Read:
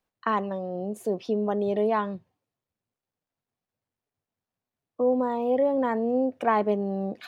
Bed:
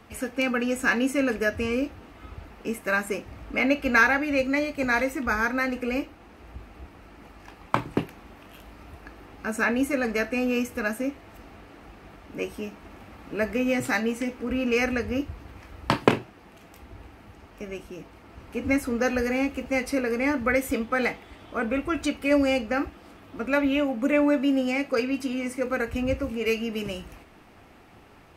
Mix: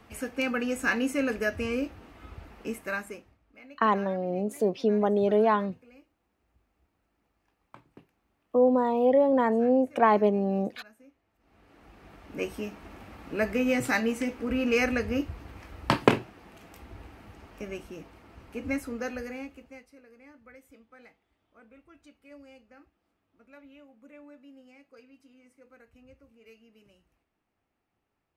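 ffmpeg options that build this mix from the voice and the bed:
-filter_complex "[0:a]adelay=3550,volume=1.26[s0];[1:a]volume=14.1,afade=t=out:st=2.64:d=0.74:silence=0.0630957,afade=t=in:st=11.39:d=1.06:silence=0.0473151,afade=t=out:st=17.51:d=2.36:silence=0.0398107[s1];[s0][s1]amix=inputs=2:normalize=0"

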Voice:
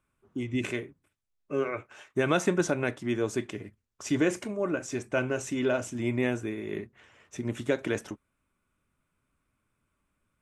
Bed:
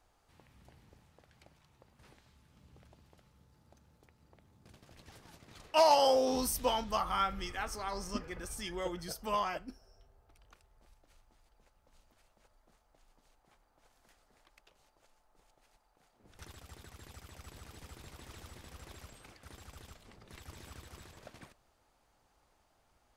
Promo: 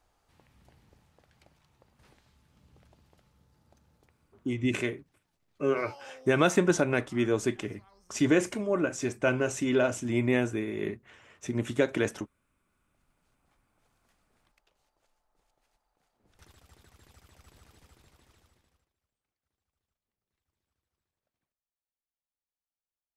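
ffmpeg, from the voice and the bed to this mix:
-filter_complex "[0:a]adelay=4100,volume=1.26[s0];[1:a]volume=6.68,afade=t=out:st=4:d=0.63:silence=0.0749894,afade=t=in:st=12.49:d=1.04:silence=0.141254,afade=t=out:st=17.6:d=1.3:silence=0.0334965[s1];[s0][s1]amix=inputs=2:normalize=0"

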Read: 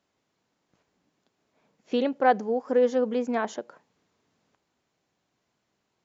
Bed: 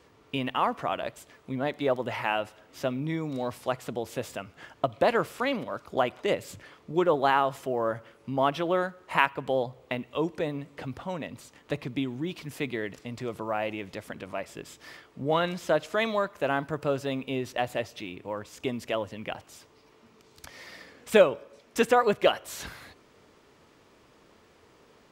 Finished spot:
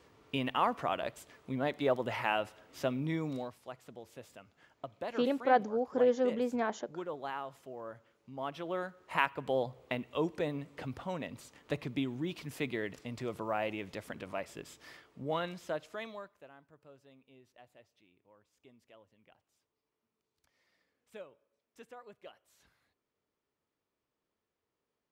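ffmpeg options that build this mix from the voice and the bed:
-filter_complex "[0:a]adelay=3250,volume=0.531[s0];[1:a]volume=2.82,afade=t=out:st=3.31:d=0.21:silence=0.223872,afade=t=in:st=8.31:d=1.37:silence=0.237137,afade=t=out:st=14.37:d=2.13:silence=0.0530884[s1];[s0][s1]amix=inputs=2:normalize=0"

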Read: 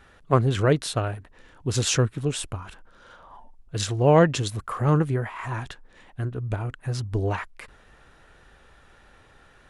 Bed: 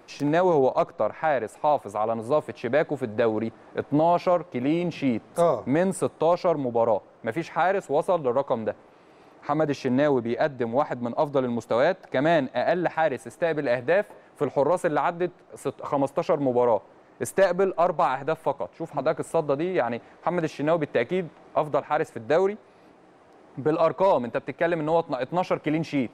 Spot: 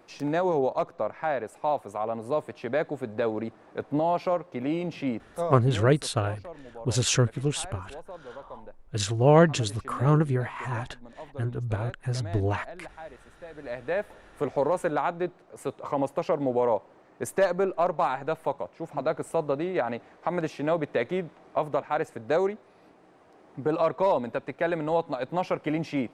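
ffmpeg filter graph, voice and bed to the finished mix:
-filter_complex "[0:a]adelay=5200,volume=0.891[s0];[1:a]volume=3.98,afade=t=out:st=5.03:d=0.89:silence=0.177828,afade=t=in:st=13.53:d=0.7:silence=0.149624[s1];[s0][s1]amix=inputs=2:normalize=0"

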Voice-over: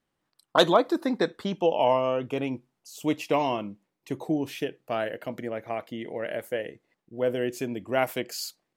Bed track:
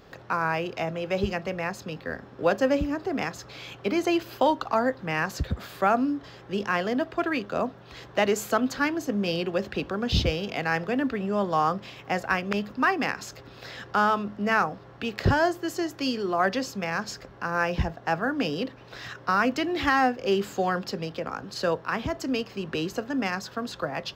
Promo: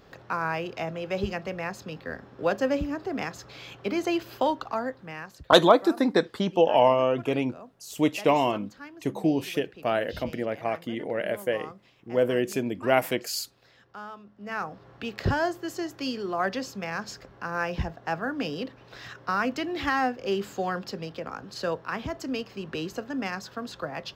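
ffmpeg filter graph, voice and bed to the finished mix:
-filter_complex "[0:a]adelay=4950,volume=1.41[s0];[1:a]volume=4.22,afade=t=out:st=4.41:d=0.99:silence=0.158489,afade=t=in:st=14.35:d=0.54:silence=0.177828[s1];[s0][s1]amix=inputs=2:normalize=0"

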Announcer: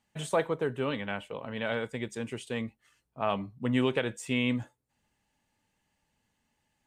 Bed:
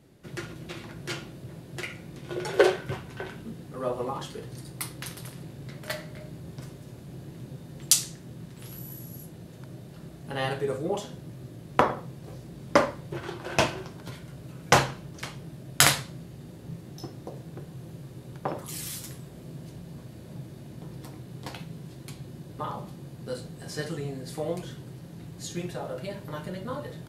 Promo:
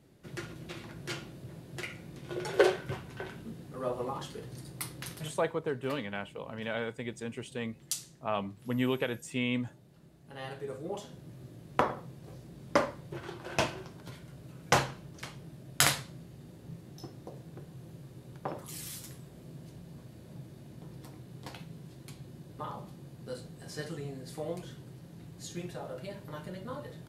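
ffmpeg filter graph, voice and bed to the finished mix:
-filter_complex "[0:a]adelay=5050,volume=0.708[s0];[1:a]volume=1.68,afade=t=out:st=5.12:d=0.44:silence=0.298538,afade=t=in:st=10.25:d=1.15:silence=0.375837[s1];[s0][s1]amix=inputs=2:normalize=0"

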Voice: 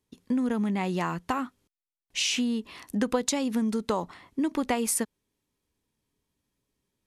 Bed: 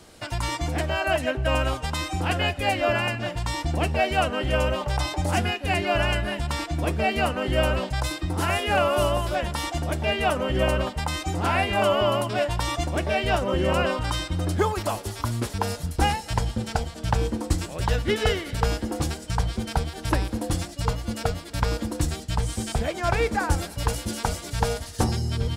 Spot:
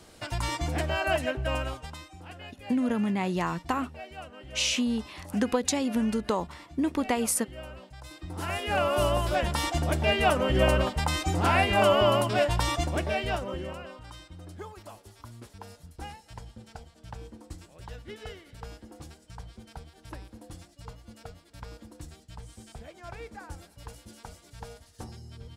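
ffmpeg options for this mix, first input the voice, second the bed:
-filter_complex "[0:a]adelay=2400,volume=1[s0];[1:a]volume=7.08,afade=t=out:st=1.16:d=0.93:silence=0.141254,afade=t=in:st=8.02:d=1.46:silence=0.1,afade=t=out:st=12.56:d=1.23:silence=0.112202[s1];[s0][s1]amix=inputs=2:normalize=0"

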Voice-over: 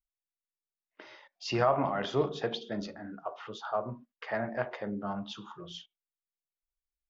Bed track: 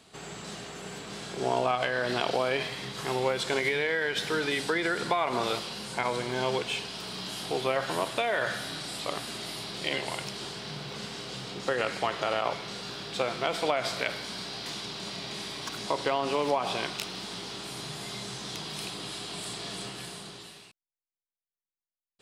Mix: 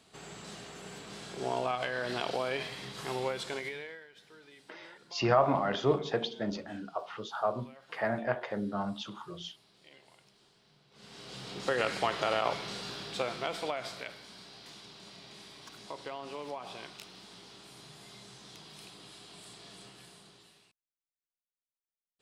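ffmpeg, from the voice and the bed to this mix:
-filter_complex "[0:a]adelay=3700,volume=1.19[s0];[1:a]volume=10.6,afade=t=out:st=3.22:d=0.85:silence=0.0841395,afade=t=in:st=10.91:d=0.87:silence=0.0501187,afade=t=out:st=12.62:d=1.53:silence=0.237137[s1];[s0][s1]amix=inputs=2:normalize=0"

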